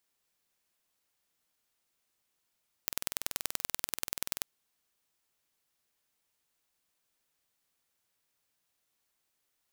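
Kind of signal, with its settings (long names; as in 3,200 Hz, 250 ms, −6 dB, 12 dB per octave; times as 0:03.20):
impulse train 20.8 per second, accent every 2, −3 dBFS 1.55 s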